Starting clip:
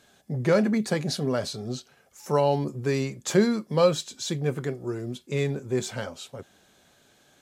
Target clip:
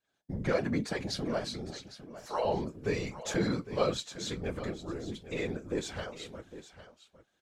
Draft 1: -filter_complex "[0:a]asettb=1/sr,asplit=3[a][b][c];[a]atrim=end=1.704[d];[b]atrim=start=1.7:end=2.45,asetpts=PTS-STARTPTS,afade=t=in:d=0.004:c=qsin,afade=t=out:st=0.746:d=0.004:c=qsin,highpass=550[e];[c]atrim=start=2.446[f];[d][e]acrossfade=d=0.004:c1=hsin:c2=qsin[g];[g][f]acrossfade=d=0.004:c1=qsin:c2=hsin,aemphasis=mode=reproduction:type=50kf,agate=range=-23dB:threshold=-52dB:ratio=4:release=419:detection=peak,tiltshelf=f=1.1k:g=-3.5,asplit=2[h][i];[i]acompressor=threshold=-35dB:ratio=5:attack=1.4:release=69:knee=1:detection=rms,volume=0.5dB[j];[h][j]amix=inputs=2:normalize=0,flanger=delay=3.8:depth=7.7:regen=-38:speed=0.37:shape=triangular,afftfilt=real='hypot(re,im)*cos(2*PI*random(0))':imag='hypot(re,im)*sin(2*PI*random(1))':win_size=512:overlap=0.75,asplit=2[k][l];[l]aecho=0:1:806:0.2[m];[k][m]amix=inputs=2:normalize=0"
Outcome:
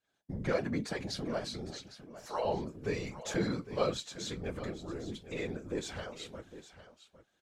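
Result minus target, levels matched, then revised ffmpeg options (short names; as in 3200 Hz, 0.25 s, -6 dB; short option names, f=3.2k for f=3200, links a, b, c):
compressor: peak gain reduction +9 dB
-filter_complex "[0:a]asettb=1/sr,asplit=3[a][b][c];[a]atrim=end=1.704[d];[b]atrim=start=1.7:end=2.45,asetpts=PTS-STARTPTS,afade=t=in:d=0.004:c=qsin,afade=t=out:st=0.746:d=0.004:c=qsin,highpass=550[e];[c]atrim=start=2.446[f];[d][e]acrossfade=d=0.004:c1=hsin:c2=qsin[g];[g][f]acrossfade=d=0.004:c1=qsin:c2=hsin,aemphasis=mode=reproduction:type=50kf,agate=range=-23dB:threshold=-52dB:ratio=4:release=419:detection=peak,tiltshelf=f=1.1k:g=-3.5,asplit=2[h][i];[i]acompressor=threshold=-23.5dB:ratio=5:attack=1.4:release=69:knee=1:detection=rms,volume=0.5dB[j];[h][j]amix=inputs=2:normalize=0,flanger=delay=3.8:depth=7.7:regen=-38:speed=0.37:shape=triangular,afftfilt=real='hypot(re,im)*cos(2*PI*random(0))':imag='hypot(re,im)*sin(2*PI*random(1))':win_size=512:overlap=0.75,asplit=2[k][l];[l]aecho=0:1:806:0.2[m];[k][m]amix=inputs=2:normalize=0"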